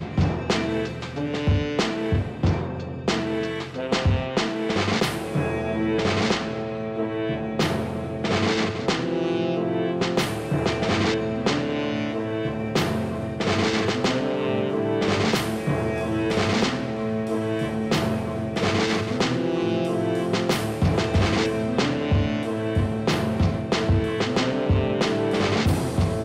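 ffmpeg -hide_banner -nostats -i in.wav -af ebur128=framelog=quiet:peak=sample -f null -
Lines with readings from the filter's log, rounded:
Integrated loudness:
  I:         -24.2 LUFS
  Threshold: -34.1 LUFS
Loudness range:
  LRA:         1.9 LU
  Threshold: -44.2 LUFS
  LRA low:   -25.1 LUFS
  LRA high:  -23.2 LUFS
Sample peak:
  Peak:      -10.3 dBFS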